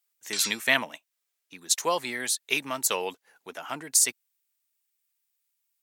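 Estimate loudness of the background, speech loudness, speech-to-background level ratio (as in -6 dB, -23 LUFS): -33.0 LUFS, -26.0 LUFS, 7.0 dB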